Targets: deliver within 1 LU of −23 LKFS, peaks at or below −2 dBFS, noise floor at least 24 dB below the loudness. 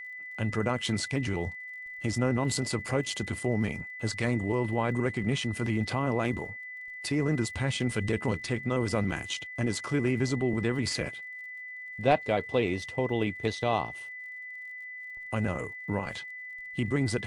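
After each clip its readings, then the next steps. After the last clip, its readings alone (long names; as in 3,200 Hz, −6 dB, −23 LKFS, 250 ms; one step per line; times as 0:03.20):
crackle rate 48 per second; interfering tone 2,000 Hz; level of the tone −39 dBFS; integrated loudness −30.5 LKFS; sample peak −9.5 dBFS; target loudness −23.0 LKFS
→ click removal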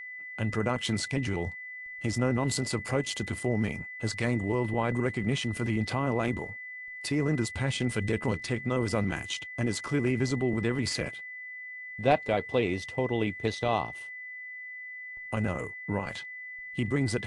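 crackle rate 0 per second; interfering tone 2,000 Hz; level of the tone −39 dBFS
→ notch filter 2,000 Hz, Q 30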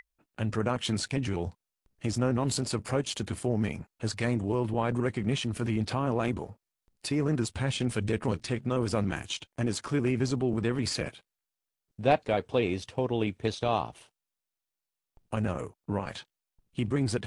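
interfering tone none found; integrated loudness −30.5 LKFS; sample peak −10.0 dBFS; target loudness −23.0 LKFS
→ level +7.5 dB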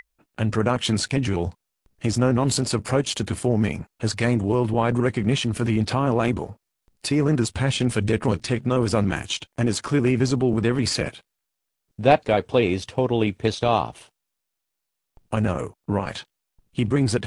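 integrated loudness −23.0 LKFS; sample peak −2.5 dBFS; background noise floor −81 dBFS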